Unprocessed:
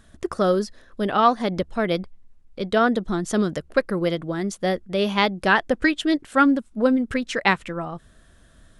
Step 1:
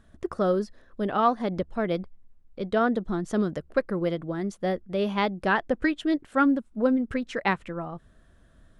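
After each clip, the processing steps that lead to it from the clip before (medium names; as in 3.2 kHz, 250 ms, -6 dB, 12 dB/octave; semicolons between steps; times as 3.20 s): treble shelf 2.4 kHz -10 dB; trim -3.5 dB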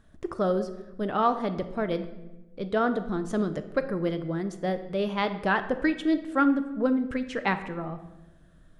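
simulated room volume 510 m³, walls mixed, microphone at 0.47 m; trim -1.5 dB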